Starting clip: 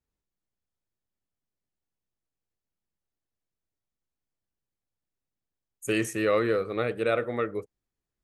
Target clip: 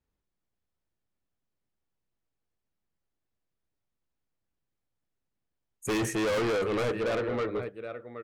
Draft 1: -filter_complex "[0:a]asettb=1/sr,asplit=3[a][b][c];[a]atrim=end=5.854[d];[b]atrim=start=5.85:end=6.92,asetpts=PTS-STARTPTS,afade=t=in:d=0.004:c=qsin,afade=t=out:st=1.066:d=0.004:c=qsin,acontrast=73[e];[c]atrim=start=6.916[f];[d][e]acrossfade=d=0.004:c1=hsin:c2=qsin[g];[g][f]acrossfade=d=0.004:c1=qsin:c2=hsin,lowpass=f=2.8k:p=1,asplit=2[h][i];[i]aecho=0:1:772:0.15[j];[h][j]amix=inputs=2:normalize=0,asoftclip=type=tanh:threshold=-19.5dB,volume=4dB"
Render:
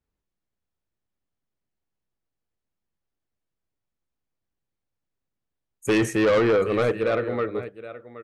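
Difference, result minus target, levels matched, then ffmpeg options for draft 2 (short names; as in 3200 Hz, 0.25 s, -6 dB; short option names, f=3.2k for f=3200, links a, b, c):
soft clip: distortion -7 dB
-filter_complex "[0:a]asettb=1/sr,asplit=3[a][b][c];[a]atrim=end=5.854[d];[b]atrim=start=5.85:end=6.92,asetpts=PTS-STARTPTS,afade=t=in:d=0.004:c=qsin,afade=t=out:st=1.066:d=0.004:c=qsin,acontrast=73[e];[c]atrim=start=6.916[f];[d][e]acrossfade=d=0.004:c1=hsin:c2=qsin[g];[g][f]acrossfade=d=0.004:c1=qsin:c2=hsin,lowpass=f=2.8k:p=1,asplit=2[h][i];[i]aecho=0:1:772:0.15[j];[h][j]amix=inputs=2:normalize=0,asoftclip=type=tanh:threshold=-30dB,volume=4dB"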